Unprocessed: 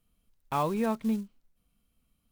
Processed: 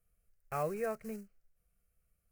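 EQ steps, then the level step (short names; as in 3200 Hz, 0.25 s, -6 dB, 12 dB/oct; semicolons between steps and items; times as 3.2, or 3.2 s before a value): fixed phaser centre 950 Hz, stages 6; -2.5 dB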